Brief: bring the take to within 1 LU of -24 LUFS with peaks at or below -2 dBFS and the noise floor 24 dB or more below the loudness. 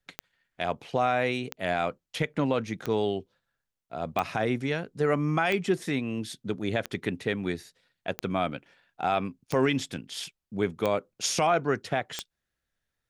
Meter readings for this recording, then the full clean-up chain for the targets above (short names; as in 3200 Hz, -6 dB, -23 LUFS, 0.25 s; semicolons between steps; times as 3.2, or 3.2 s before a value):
clicks 10; loudness -29.5 LUFS; peak -12.5 dBFS; loudness target -24.0 LUFS
-> de-click; gain +5.5 dB